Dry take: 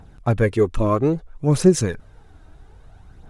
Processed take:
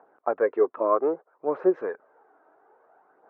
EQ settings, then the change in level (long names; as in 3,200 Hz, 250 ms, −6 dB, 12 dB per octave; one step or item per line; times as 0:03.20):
high-pass filter 420 Hz 24 dB per octave
low-pass filter 1,400 Hz 24 dB per octave
0.0 dB